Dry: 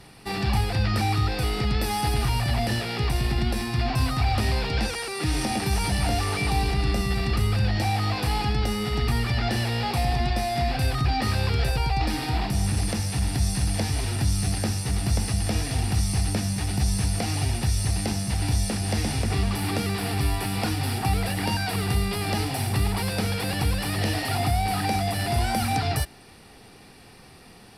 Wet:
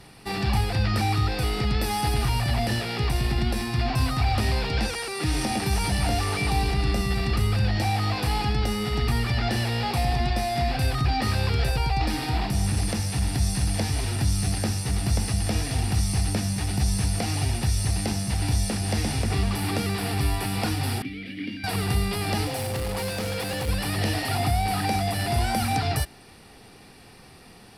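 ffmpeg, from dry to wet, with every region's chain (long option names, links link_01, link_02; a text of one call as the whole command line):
ffmpeg -i in.wav -filter_complex "[0:a]asettb=1/sr,asplit=3[link_01][link_02][link_03];[link_01]atrim=end=21.024[link_04];[link_02]atrim=start=21.02:end=21.64,asetpts=PTS-STARTPTS,afade=type=in:duration=0.004:curve=qsin,afade=type=out:start_time=0.616:duration=0.004:curve=qsin,equalizer=frequency=7600:width_type=o:width=0.83:gain=-5.5,acontrast=64,asplit=3[link_05][link_06][link_07];[link_05]bandpass=frequency=270:width_type=q:width=8,volume=0dB[link_08];[link_06]bandpass=frequency=2290:width_type=q:width=8,volume=-6dB[link_09];[link_07]bandpass=frequency=3010:width_type=q:width=8,volume=-9dB[link_10];[link_08][link_09][link_10]amix=inputs=3:normalize=0[link_11];[link_03]atrim=start=21.636[link_12];[link_04][link_11]acrossfade=duration=0.004:curve1=hsin:curve2=qsin[link_13];[link_13][link_12]acrossfade=duration=0.004:curve1=qsin:curve2=hsin,asettb=1/sr,asplit=3[link_14][link_15][link_16];[link_14]atrim=end=22.474[link_17];[link_15]atrim=start=22.47:end=23.69,asetpts=PTS-STARTPTS,afade=type=in:duration=0.004:curve=qsin,afade=type=out:start_time=1.216:duration=0.004:curve=qsin,bass=frequency=250:gain=-3,treble=frequency=4000:gain=0,volume=26.5dB,asoftclip=hard,volume=-26.5dB,aeval=exprs='val(0)+0.0251*sin(2*PI*520*n/s)':channel_layout=same[link_18];[link_16]atrim=start=23.686[link_19];[link_17][link_18]acrossfade=duration=0.004:curve1=hsin:curve2=qsin[link_20];[link_20][link_19]acrossfade=duration=0.004:curve1=qsin:curve2=hsin" out.wav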